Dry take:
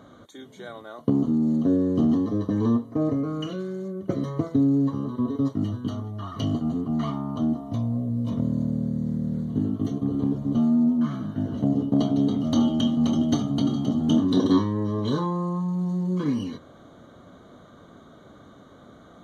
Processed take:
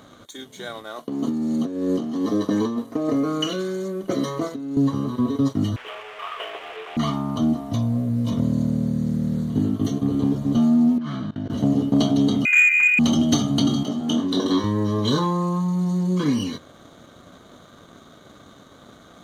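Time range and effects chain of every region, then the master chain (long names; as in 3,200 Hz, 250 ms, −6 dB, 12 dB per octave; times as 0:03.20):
0:00.96–0:04.77: high-pass filter 230 Hz + compressor whose output falls as the input rises −26 dBFS, ratio −0.5
0:05.76–0:06.97: linear delta modulator 16 kbit/s, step −35 dBFS + elliptic high-pass filter 420 Hz
0:10.98–0:11.50: low-pass filter 5,100 Hz 24 dB per octave + output level in coarse steps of 16 dB
0:12.45–0:12.99: high-pass filter 250 Hz + voice inversion scrambler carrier 2,700 Hz
0:13.83–0:14.64: high-pass filter 540 Hz 6 dB per octave + high-shelf EQ 2,200 Hz −8 dB + double-tracking delay 21 ms −8 dB
whole clip: high-shelf EQ 2,300 Hz +11 dB; leveller curve on the samples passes 1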